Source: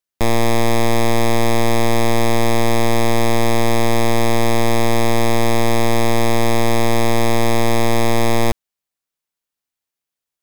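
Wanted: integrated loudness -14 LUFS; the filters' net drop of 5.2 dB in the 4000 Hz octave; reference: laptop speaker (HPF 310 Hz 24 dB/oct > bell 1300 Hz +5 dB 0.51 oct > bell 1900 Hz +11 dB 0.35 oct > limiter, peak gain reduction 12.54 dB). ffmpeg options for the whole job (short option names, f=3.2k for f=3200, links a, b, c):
-af "highpass=f=310:w=0.5412,highpass=f=310:w=1.3066,equalizer=f=1.3k:t=o:w=0.51:g=5,equalizer=f=1.9k:t=o:w=0.35:g=11,equalizer=f=4k:t=o:g=-7,volume=16dB,alimiter=limit=-2.5dB:level=0:latency=1"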